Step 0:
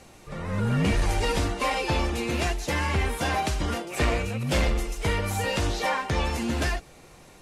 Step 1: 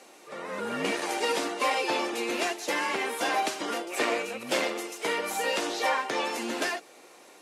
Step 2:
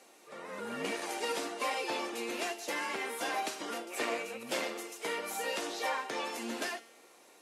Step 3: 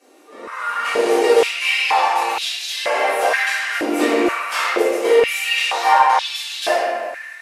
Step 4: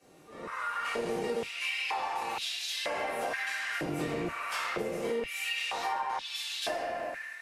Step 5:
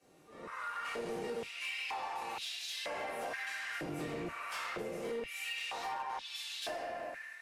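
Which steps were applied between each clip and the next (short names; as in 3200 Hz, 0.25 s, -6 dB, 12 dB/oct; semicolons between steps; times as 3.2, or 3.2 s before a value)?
HPF 290 Hz 24 dB/oct
high shelf 10000 Hz +6 dB; resonator 230 Hz, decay 0.72 s, harmonics all, mix 60%
AGC gain up to 7 dB; reverb RT60 1.9 s, pre-delay 3 ms, DRR -11.5 dB; stepped high-pass 2.1 Hz 300–3600 Hz; gain -5.5 dB
octaver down 1 oct, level -1 dB; compressor 5:1, threshold -23 dBFS, peak gain reduction 13.5 dB; gain -8 dB
overloaded stage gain 27.5 dB; gain -6 dB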